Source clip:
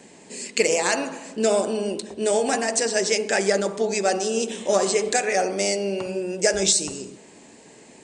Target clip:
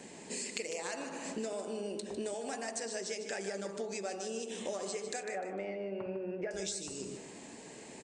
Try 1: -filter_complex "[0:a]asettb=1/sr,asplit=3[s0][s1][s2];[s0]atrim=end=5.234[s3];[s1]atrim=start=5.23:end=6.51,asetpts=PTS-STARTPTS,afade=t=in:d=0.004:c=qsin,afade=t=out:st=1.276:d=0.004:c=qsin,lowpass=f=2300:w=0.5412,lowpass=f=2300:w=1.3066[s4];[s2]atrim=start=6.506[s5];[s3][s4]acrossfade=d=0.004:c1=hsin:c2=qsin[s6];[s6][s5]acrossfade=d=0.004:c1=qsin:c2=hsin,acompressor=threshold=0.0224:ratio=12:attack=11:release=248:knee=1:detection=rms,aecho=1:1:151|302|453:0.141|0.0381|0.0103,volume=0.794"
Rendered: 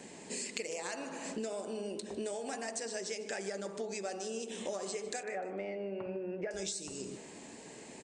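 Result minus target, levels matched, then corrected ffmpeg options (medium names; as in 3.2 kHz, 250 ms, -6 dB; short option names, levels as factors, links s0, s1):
echo-to-direct -7.5 dB
-filter_complex "[0:a]asettb=1/sr,asplit=3[s0][s1][s2];[s0]atrim=end=5.234[s3];[s1]atrim=start=5.23:end=6.51,asetpts=PTS-STARTPTS,afade=t=in:d=0.004:c=qsin,afade=t=out:st=1.276:d=0.004:c=qsin,lowpass=f=2300:w=0.5412,lowpass=f=2300:w=1.3066[s4];[s2]atrim=start=6.506[s5];[s3][s4]acrossfade=d=0.004:c1=hsin:c2=qsin[s6];[s6][s5]acrossfade=d=0.004:c1=qsin:c2=hsin,acompressor=threshold=0.0224:ratio=12:attack=11:release=248:knee=1:detection=rms,aecho=1:1:151|302|453:0.335|0.0904|0.0244,volume=0.794"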